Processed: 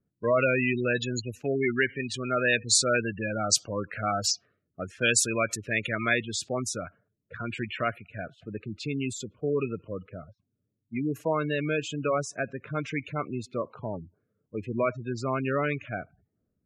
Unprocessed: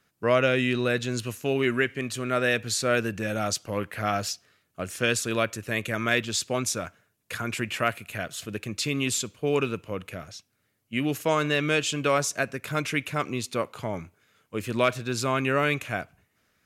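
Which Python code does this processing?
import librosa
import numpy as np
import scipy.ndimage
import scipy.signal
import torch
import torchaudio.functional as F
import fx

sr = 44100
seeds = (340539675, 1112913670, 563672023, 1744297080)

y = fx.spec_gate(x, sr, threshold_db=-15, keep='strong')
y = fx.env_lowpass(y, sr, base_hz=320.0, full_db=-25.0)
y = fx.high_shelf(y, sr, hz=2500.0, db=fx.steps((0.0, 10.5), (6.13, -2.5), (7.92, -8.5)))
y = y * librosa.db_to_amplitude(-2.0)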